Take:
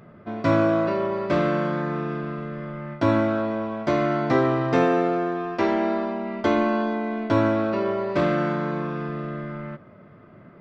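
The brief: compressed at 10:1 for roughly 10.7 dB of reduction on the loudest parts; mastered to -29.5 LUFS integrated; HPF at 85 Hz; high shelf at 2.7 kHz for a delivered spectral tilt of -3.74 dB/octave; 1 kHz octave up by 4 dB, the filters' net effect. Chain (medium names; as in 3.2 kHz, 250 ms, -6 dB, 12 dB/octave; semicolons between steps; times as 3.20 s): high-pass 85 Hz; peaking EQ 1 kHz +6 dB; treble shelf 2.7 kHz -5 dB; compression 10:1, threshold -25 dBFS; trim +0.5 dB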